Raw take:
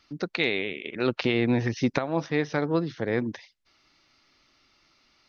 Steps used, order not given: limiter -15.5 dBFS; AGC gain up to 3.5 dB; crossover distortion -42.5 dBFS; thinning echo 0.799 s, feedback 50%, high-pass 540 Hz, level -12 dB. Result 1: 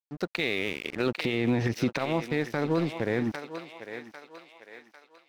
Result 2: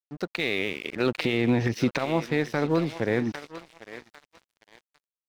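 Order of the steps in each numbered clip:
crossover distortion > thinning echo > AGC > limiter; thinning echo > limiter > AGC > crossover distortion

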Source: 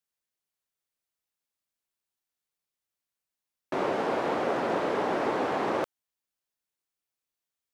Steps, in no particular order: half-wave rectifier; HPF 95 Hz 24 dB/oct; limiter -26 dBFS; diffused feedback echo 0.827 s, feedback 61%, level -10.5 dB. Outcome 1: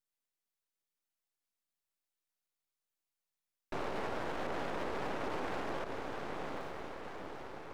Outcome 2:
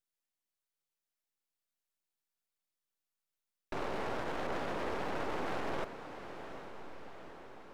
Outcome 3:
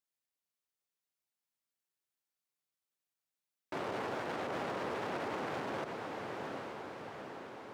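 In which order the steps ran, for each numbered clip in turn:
diffused feedback echo > limiter > HPF > half-wave rectifier; HPF > half-wave rectifier > limiter > diffused feedback echo; half-wave rectifier > diffused feedback echo > limiter > HPF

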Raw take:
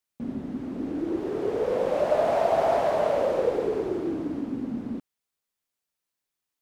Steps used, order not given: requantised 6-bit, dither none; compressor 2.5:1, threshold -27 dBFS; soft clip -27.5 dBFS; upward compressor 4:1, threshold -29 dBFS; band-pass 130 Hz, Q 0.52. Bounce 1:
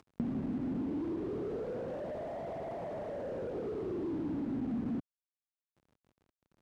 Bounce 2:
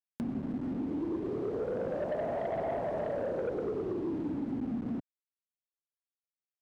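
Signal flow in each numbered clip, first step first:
compressor > soft clip > upward compressor > requantised > band-pass; requantised > band-pass > upward compressor > soft clip > compressor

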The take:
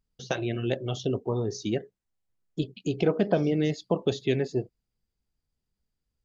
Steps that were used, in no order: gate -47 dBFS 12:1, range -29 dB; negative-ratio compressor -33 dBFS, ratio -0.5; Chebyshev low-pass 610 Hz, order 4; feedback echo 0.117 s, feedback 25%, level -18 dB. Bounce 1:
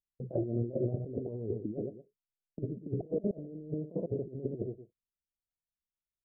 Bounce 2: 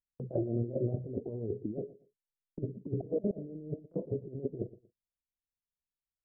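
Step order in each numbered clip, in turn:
gate > feedback echo > negative-ratio compressor > Chebyshev low-pass; negative-ratio compressor > Chebyshev low-pass > gate > feedback echo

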